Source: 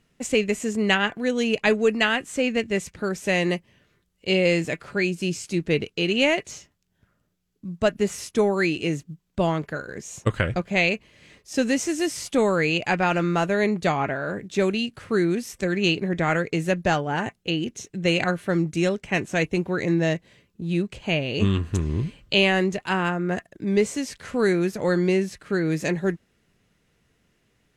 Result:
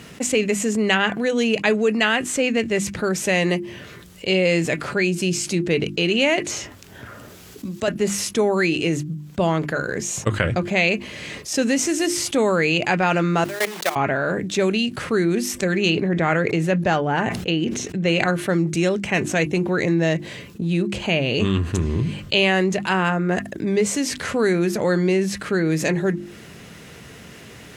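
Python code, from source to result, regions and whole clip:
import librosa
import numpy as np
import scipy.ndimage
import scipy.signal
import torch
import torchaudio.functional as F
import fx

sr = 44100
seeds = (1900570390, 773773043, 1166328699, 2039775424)

y = fx.chain(x, sr, fx.peak_eq(hz=170.0, db=-12.5, octaves=0.36),
    fx.band_squash(depth_pct=40), at=(6.41, 7.88))
y = fx.chain(y, sr, fx.block_float(bits=3),
    fx.level_steps(step_db=20),
    fx.highpass(hz=500.0, slope=12), at=(13.44, 13.96))
y = fx.chain(y, sr, fx.lowpass(hz=3800.0, slope=6),
    fx.sustainer(db_per_s=100.0), at=(15.9, 18.19))
y = scipy.signal.sosfilt(scipy.signal.butter(2, 76.0, 'highpass', fs=sr, output='sos'), y)
y = fx.hum_notches(y, sr, base_hz=50, count=7)
y = fx.env_flatten(y, sr, amount_pct=50)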